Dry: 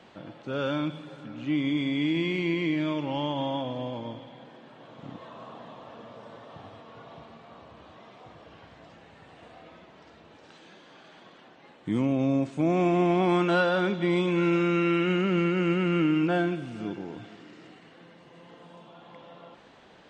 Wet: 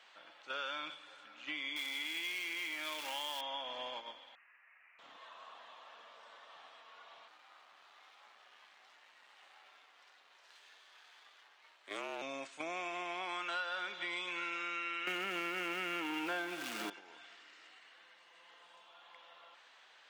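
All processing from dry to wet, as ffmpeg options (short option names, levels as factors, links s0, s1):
-filter_complex "[0:a]asettb=1/sr,asplit=3[s0][s1][s2];[s0]atrim=end=1.764[s3];[s1]atrim=start=1.76:end=3.41,asetpts=PTS-STARTPTS,afade=t=in:d=0.004:c=qsin,afade=t=out:st=1.646:d=0.004:c=qsin,aeval=exprs='val(0)+0.5*0.0178*sgn(val(0))':c=same,bass=f=250:g=-4,treble=f=4000:g=2[s4];[s2]atrim=start=3.406[s5];[s3][s4]acrossfade=d=0.004:c1=hsin:c2=qsin[s6];[s6][s5]acrossfade=d=0.004:c1=qsin:c2=hsin,asettb=1/sr,asplit=3[s7][s8][s9];[s7]atrim=end=4.354[s10];[s8]atrim=start=4.35:end=4.99,asetpts=PTS-STARTPTS,afade=t=in:d=0.004:c=qsin,afade=t=out:st=0.636:d=0.004:c=qsin,highpass=f=1400:w=0.5412,highpass=f=1400:w=1.3066,lowpass=f=3000:t=q:w=0.5098,lowpass=f=3000:t=q:w=0.6013,lowpass=f=3000:t=q:w=0.9,lowpass=f=3000:t=q:w=2.563,afreqshift=-3500[s11];[s9]atrim=start=4.986[s12];[s10][s11]acrossfade=d=0.004:c1=hsin:c2=qsin[s13];[s13][s12]acrossfade=d=0.004:c1=qsin:c2=hsin,asettb=1/sr,asplit=3[s14][s15][s16];[s14]atrim=end=7.284[s17];[s15]atrim=start=7.28:end=12.22,asetpts=PTS-STARTPTS,afade=t=in:d=0.004:c=qsin,afade=t=out:st=4.936:d=0.004:c=qsin,aeval=exprs='if(lt(val(0),0),0.251*val(0),val(0))':c=same,afreqshift=90[s18];[s16]atrim=start=12.216[s19];[s17][s18]acrossfade=d=0.004:c1=hsin:c2=qsin[s20];[s20][s19]acrossfade=d=0.004:c1=qsin:c2=hsin,asettb=1/sr,asplit=3[s21][s22][s23];[s21]atrim=end=15.074[s24];[s22]atrim=start=15.07:end=16.9,asetpts=PTS-STARTPTS,afade=t=in:d=0.004:c=qsin,afade=t=out:st=1.826:d=0.004:c=qsin,aeval=exprs='val(0)+0.5*0.0126*sgn(val(0))':c=same,equalizer=f=260:t=o:w=1.8:g=11,acontrast=78[s25];[s23]atrim=start=16.896[s26];[s24][s25]acrossfade=d=0.004:c1=hsin:c2=qsin[s27];[s27][s26]acrossfade=d=0.004:c1=qsin:c2=hsin,highpass=1300,agate=range=0.398:threshold=0.00447:ratio=16:detection=peak,acompressor=threshold=0.00562:ratio=4,volume=2"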